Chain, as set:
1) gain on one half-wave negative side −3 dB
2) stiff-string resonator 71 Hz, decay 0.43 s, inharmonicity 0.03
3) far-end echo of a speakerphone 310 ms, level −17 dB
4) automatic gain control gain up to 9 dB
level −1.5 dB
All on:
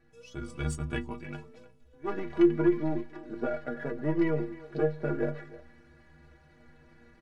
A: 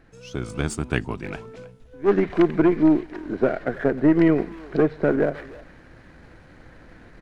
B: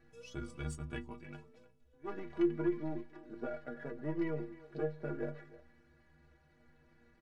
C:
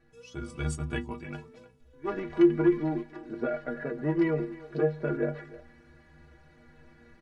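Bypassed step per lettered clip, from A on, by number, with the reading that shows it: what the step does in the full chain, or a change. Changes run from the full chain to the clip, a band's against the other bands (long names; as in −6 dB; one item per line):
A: 2, 125 Hz band −2.5 dB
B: 4, change in momentary loudness spread −1 LU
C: 1, distortion level −15 dB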